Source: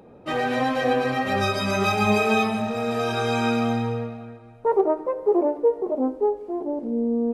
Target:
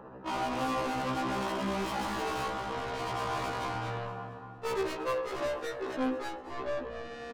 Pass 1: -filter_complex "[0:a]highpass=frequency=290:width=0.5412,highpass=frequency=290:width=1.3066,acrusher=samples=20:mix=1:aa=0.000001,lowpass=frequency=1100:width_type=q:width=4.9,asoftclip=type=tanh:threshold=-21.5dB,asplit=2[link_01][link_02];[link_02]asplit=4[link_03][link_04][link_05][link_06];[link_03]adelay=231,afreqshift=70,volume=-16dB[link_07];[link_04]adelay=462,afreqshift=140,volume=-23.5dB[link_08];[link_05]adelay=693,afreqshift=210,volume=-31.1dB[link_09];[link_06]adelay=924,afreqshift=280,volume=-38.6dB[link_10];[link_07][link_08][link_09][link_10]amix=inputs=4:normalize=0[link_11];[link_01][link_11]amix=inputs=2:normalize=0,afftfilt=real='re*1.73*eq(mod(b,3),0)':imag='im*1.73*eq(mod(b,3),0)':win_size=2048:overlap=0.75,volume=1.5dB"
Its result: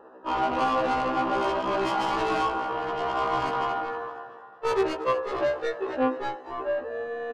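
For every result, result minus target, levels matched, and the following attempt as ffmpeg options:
250 Hz band −3.0 dB; soft clipping: distortion −4 dB
-filter_complex "[0:a]acrusher=samples=20:mix=1:aa=0.000001,lowpass=frequency=1100:width_type=q:width=4.9,asoftclip=type=tanh:threshold=-21.5dB,asplit=2[link_01][link_02];[link_02]asplit=4[link_03][link_04][link_05][link_06];[link_03]adelay=231,afreqshift=70,volume=-16dB[link_07];[link_04]adelay=462,afreqshift=140,volume=-23.5dB[link_08];[link_05]adelay=693,afreqshift=210,volume=-31.1dB[link_09];[link_06]adelay=924,afreqshift=280,volume=-38.6dB[link_10];[link_07][link_08][link_09][link_10]amix=inputs=4:normalize=0[link_11];[link_01][link_11]amix=inputs=2:normalize=0,afftfilt=real='re*1.73*eq(mod(b,3),0)':imag='im*1.73*eq(mod(b,3),0)':win_size=2048:overlap=0.75,volume=1.5dB"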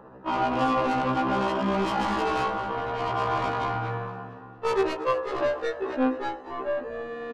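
soft clipping: distortion −4 dB
-filter_complex "[0:a]acrusher=samples=20:mix=1:aa=0.000001,lowpass=frequency=1100:width_type=q:width=4.9,asoftclip=type=tanh:threshold=-31dB,asplit=2[link_01][link_02];[link_02]asplit=4[link_03][link_04][link_05][link_06];[link_03]adelay=231,afreqshift=70,volume=-16dB[link_07];[link_04]adelay=462,afreqshift=140,volume=-23.5dB[link_08];[link_05]adelay=693,afreqshift=210,volume=-31.1dB[link_09];[link_06]adelay=924,afreqshift=280,volume=-38.6dB[link_10];[link_07][link_08][link_09][link_10]amix=inputs=4:normalize=0[link_11];[link_01][link_11]amix=inputs=2:normalize=0,afftfilt=real='re*1.73*eq(mod(b,3),0)':imag='im*1.73*eq(mod(b,3),0)':win_size=2048:overlap=0.75,volume=1.5dB"

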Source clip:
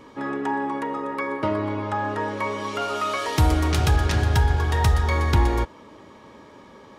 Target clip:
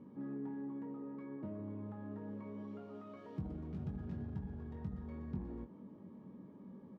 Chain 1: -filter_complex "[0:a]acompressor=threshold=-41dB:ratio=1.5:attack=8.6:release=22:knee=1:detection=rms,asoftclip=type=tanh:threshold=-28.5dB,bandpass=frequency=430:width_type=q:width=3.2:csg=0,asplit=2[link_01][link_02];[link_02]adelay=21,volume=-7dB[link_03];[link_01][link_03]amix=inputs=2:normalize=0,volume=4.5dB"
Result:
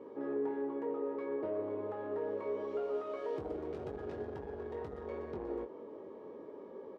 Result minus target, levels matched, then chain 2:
500 Hz band +10.0 dB; downward compressor: peak gain reduction −4 dB
-filter_complex "[0:a]acompressor=threshold=-52.5dB:ratio=1.5:attack=8.6:release=22:knee=1:detection=rms,asoftclip=type=tanh:threshold=-28.5dB,bandpass=frequency=190:width_type=q:width=3.2:csg=0,asplit=2[link_01][link_02];[link_02]adelay=21,volume=-7dB[link_03];[link_01][link_03]amix=inputs=2:normalize=0,volume=4.5dB"

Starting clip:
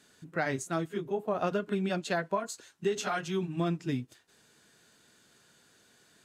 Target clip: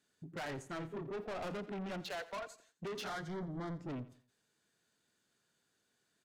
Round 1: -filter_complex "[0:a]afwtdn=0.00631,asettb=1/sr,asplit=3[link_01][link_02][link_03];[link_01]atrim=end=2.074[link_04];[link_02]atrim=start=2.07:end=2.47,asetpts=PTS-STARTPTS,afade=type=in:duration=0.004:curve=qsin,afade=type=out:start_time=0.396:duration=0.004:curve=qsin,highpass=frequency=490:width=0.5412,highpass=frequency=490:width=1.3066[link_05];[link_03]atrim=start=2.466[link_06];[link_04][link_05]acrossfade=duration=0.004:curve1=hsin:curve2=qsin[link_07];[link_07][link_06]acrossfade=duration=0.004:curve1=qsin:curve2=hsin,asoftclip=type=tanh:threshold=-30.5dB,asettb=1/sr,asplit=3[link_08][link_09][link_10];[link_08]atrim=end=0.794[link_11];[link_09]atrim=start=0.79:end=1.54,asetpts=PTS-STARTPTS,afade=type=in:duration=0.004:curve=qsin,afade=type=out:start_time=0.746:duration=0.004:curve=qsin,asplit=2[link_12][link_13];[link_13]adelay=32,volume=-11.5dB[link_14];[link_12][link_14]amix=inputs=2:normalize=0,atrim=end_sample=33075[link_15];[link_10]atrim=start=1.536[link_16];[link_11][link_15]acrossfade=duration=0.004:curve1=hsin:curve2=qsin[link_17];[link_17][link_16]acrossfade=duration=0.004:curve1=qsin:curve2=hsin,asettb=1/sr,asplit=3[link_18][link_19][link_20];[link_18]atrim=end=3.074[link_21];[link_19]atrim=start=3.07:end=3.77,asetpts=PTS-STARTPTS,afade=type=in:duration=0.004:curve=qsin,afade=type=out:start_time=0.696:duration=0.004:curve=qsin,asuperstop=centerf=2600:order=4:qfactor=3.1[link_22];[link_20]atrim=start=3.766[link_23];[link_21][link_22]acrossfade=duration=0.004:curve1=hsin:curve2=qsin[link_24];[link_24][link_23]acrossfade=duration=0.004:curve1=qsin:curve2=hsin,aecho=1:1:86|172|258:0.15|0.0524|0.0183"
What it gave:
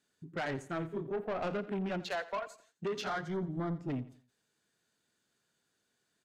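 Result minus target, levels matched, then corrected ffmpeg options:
soft clipping: distortion −5 dB
-filter_complex "[0:a]afwtdn=0.00631,asettb=1/sr,asplit=3[link_01][link_02][link_03];[link_01]atrim=end=2.074[link_04];[link_02]atrim=start=2.07:end=2.47,asetpts=PTS-STARTPTS,afade=type=in:duration=0.004:curve=qsin,afade=type=out:start_time=0.396:duration=0.004:curve=qsin,highpass=frequency=490:width=0.5412,highpass=frequency=490:width=1.3066[link_05];[link_03]atrim=start=2.466[link_06];[link_04][link_05]acrossfade=duration=0.004:curve1=hsin:curve2=qsin[link_07];[link_07][link_06]acrossfade=duration=0.004:curve1=qsin:curve2=hsin,asoftclip=type=tanh:threshold=-39dB,asettb=1/sr,asplit=3[link_08][link_09][link_10];[link_08]atrim=end=0.794[link_11];[link_09]atrim=start=0.79:end=1.54,asetpts=PTS-STARTPTS,afade=type=in:duration=0.004:curve=qsin,afade=type=out:start_time=0.746:duration=0.004:curve=qsin,asplit=2[link_12][link_13];[link_13]adelay=32,volume=-11.5dB[link_14];[link_12][link_14]amix=inputs=2:normalize=0,atrim=end_sample=33075[link_15];[link_10]atrim=start=1.536[link_16];[link_11][link_15]acrossfade=duration=0.004:curve1=hsin:curve2=qsin[link_17];[link_17][link_16]acrossfade=duration=0.004:curve1=qsin:curve2=hsin,asettb=1/sr,asplit=3[link_18][link_19][link_20];[link_18]atrim=end=3.074[link_21];[link_19]atrim=start=3.07:end=3.77,asetpts=PTS-STARTPTS,afade=type=in:duration=0.004:curve=qsin,afade=type=out:start_time=0.696:duration=0.004:curve=qsin,asuperstop=centerf=2600:order=4:qfactor=3.1[link_22];[link_20]atrim=start=3.766[link_23];[link_21][link_22]acrossfade=duration=0.004:curve1=hsin:curve2=qsin[link_24];[link_24][link_23]acrossfade=duration=0.004:curve1=qsin:curve2=hsin,aecho=1:1:86|172|258:0.15|0.0524|0.0183"

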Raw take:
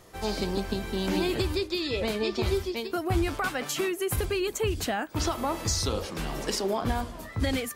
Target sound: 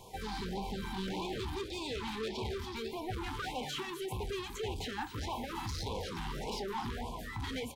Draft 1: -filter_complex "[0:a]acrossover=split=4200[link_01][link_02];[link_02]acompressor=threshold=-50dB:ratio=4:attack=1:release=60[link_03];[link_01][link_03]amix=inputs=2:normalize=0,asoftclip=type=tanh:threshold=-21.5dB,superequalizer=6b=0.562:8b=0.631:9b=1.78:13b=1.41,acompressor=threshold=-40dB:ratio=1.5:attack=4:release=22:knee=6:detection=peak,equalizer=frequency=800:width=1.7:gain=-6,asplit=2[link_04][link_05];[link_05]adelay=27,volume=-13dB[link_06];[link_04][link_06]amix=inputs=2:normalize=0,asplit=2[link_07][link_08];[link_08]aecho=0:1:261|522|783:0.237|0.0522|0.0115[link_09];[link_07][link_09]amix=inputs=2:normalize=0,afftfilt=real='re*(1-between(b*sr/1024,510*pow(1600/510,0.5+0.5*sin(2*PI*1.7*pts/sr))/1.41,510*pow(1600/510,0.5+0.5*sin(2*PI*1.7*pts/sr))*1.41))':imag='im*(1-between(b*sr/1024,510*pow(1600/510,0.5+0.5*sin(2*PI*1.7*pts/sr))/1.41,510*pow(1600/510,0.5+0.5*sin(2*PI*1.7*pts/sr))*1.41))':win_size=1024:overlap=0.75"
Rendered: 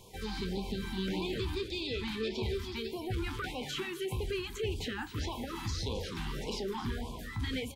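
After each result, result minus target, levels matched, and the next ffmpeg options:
soft clipping: distortion −11 dB; 1,000 Hz band −6.5 dB
-filter_complex "[0:a]acrossover=split=4200[link_01][link_02];[link_02]acompressor=threshold=-50dB:ratio=4:attack=1:release=60[link_03];[link_01][link_03]amix=inputs=2:normalize=0,asoftclip=type=tanh:threshold=-33.5dB,superequalizer=6b=0.562:8b=0.631:9b=1.78:13b=1.41,acompressor=threshold=-40dB:ratio=1.5:attack=4:release=22:knee=6:detection=peak,equalizer=frequency=800:width=1.7:gain=-6,asplit=2[link_04][link_05];[link_05]adelay=27,volume=-13dB[link_06];[link_04][link_06]amix=inputs=2:normalize=0,asplit=2[link_07][link_08];[link_08]aecho=0:1:261|522|783:0.237|0.0522|0.0115[link_09];[link_07][link_09]amix=inputs=2:normalize=0,afftfilt=real='re*(1-between(b*sr/1024,510*pow(1600/510,0.5+0.5*sin(2*PI*1.7*pts/sr))/1.41,510*pow(1600/510,0.5+0.5*sin(2*PI*1.7*pts/sr))*1.41))':imag='im*(1-between(b*sr/1024,510*pow(1600/510,0.5+0.5*sin(2*PI*1.7*pts/sr))/1.41,510*pow(1600/510,0.5+0.5*sin(2*PI*1.7*pts/sr))*1.41))':win_size=1024:overlap=0.75"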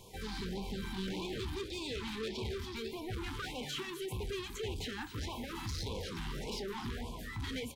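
1,000 Hz band −5.5 dB
-filter_complex "[0:a]acrossover=split=4200[link_01][link_02];[link_02]acompressor=threshold=-50dB:ratio=4:attack=1:release=60[link_03];[link_01][link_03]amix=inputs=2:normalize=0,asoftclip=type=tanh:threshold=-33.5dB,superequalizer=6b=0.562:8b=0.631:9b=1.78:13b=1.41,acompressor=threshold=-40dB:ratio=1.5:attack=4:release=22:knee=6:detection=peak,equalizer=frequency=800:width=1.7:gain=3,asplit=2[link_04][link_05];[link_05]adelay=27,volume=-13dB[link_06];[link_04][link_06]amix=inputs=2:normalize=0,asplit=2[link_07][link_08];[link_08]aecho=0:1:261|522|783:0.237|0.0522|0.0115[link_09];[link_07][link_09]amix=inputs=2:normalize=0,afftfilt=real='re*(1-between(b*sr/1024,510*pow(1600/510,0.5+0.5*sin(2*PI*1.7*pts/sr))/1.41,510*pow(1600/510,0.5+0.5*sin(2*PI*1.7*pts/sr))*1.41))':imag='im*(1-between(b*sr/1024,510*pow(1600/510,0.5+0.5*sin(2*PI*1.7*pts/sr))/1.41,510*pow(1600/510,0.5+0.5*sin(2*PI*1.7*pts/sr))*1.41))':win_size=1024:overlap=0.75"

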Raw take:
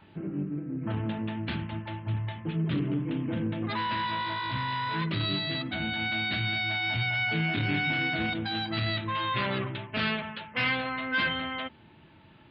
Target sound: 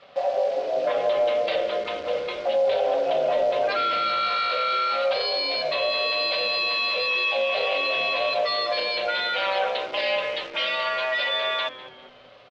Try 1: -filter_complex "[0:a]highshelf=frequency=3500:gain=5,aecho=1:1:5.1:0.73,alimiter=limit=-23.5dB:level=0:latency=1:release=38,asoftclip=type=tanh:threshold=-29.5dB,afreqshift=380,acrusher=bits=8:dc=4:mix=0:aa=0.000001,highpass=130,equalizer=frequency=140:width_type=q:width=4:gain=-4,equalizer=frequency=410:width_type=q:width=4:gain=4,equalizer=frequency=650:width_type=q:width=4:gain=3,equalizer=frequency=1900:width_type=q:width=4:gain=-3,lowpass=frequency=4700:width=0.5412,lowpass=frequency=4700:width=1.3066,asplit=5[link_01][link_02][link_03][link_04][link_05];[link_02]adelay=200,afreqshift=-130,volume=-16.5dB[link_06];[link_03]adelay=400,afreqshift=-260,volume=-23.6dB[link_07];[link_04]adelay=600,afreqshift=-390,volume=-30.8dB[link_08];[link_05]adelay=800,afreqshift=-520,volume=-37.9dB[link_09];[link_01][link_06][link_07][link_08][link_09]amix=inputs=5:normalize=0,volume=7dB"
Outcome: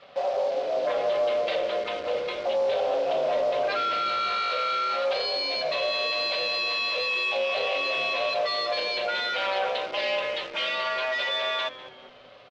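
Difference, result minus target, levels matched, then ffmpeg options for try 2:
soft clipping: distortion +17 dB
-filter_complex "[0:a]highshelf=frequency=3500:gain=5,aecho=1:1:5.1:0.73,alimiter=limit=-23.5dB:level=0:latency=1:release=38,asoftclip=type=tanh:threshold=-18.5dB,afreqshift=380,acrusher=bits=8:dc=4:mix=0:aa=0.000001,highpass=130,equalizer=frequency=140:width_type=q:width=4:gain=-4,equalizer=frequency=410:width_type=q:width=4:gain=4,equalizer=frequency=650:width_type=q:width=4:gain=3,equalizer=frequency=1900:width_type=q:width=4:gain=-3,lowpass=frequency=4700:width=0.5412,lowpass=frequency=4700:width=1.3066,asplit=5[link_01][link_02][link_03][link_04][link_05];[link_02]adelay=200,afreqshift=-130,volume=-16.5dB[link_06];[link_03]adelay=400,afreqshift=-260,volume=-23.6dB[link_07];[link_04]adelay=600,afreqshift=-390,volume=-30.8dB[link_08];[link_05]adelay=800,afreqshift=-520,volume=-37.9dB[link_09];[link_01][link_06][link_07][link_08][link_09]amix=inputs=5:normalize=0,volume=7dB"

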